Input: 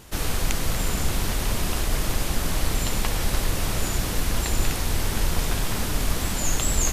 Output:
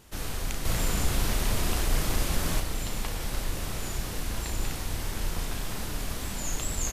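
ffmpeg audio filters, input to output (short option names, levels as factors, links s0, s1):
-filter_complex "[0:a]asettb=1/sr,asplit=3[s0][s1][s2];[s0]atrim=end=0.654[s3];[s1]atrim=start=0.65:end=2.6,asetpts=PTS-STARTPTS,afade=t=in:d=0.004:c=qsin,afade=t=out:st=1.946:d=0.004:c=qsin,acontrast=43[s4];[s2]atrim=start=2.596[s5];[s3][s4]acrossfade=d=0.004:c1=hsin:c2=qsin[s6];[s6][s5]acrossfade=d=0.004:c1=qsin:c2=hsin,asplit=2[s7][s8];[s8]adelay=35,volume=0.422[s9];[s7][s9]amix=inputs=2:normalize=0,volume=0.376"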